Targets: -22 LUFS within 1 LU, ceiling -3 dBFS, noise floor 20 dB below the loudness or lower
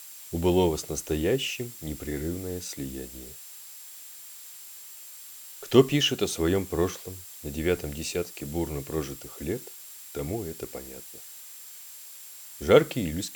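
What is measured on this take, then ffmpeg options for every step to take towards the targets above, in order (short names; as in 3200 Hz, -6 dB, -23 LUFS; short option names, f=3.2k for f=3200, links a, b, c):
steady tone 7500 Hz; tone level -51 dBFS; noise floor -45 dBFS; noise floor target -48 dBFS; loudness -28.0 LUFS; peak -4.0 dBFS; loudness target -22.0 LUFS
-> -af "bandreject=f=7.5k:w=30"
-af "afftdn=nr=6:nf=-45"
-af "volume=6dB,alimiter=limit=-3dB:level=0:latency=1"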